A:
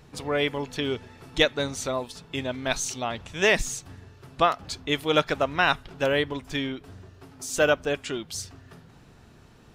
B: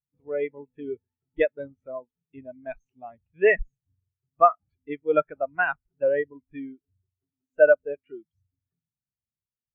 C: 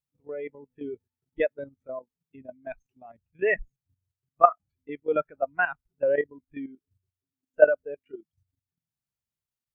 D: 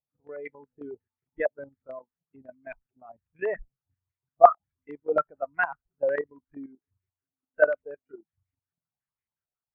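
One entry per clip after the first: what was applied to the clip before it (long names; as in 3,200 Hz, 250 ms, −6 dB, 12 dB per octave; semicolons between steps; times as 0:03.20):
high shelf with overshoot 3,400 Hz −11.5 dB, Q 1.5; every bin expanded away from the loudest bin 2.5 to 1
output level in coarse steps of 12 dB; level +2.5 dB
low-pass on a step sequencer 11 Hz 700–2,100 Hz; level −5.5 dB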